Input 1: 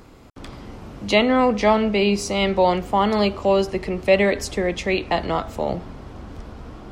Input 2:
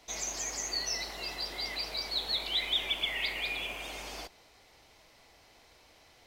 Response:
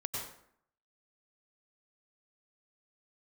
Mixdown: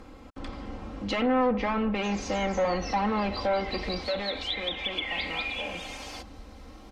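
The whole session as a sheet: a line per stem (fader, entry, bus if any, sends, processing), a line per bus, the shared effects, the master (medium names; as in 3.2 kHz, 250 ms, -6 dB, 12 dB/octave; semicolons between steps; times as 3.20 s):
3.82 s -1.5 dB -> 4.46 s -10.5 dB, 0.00 s, no send, peaking EQ 210 Hz -2.5 dB; saturation -23 dBFS, distortion -6 dB; treble shelf 5.4 kHz -9 dB
+0.5 dB, 1.95 s, no send, steep high-pass 250 Hz 96 dB/octave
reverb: none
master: comb 3.8 ms, depth 61%; low-pass that closes with the level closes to 2.2 kHz, closed at -23 dBFS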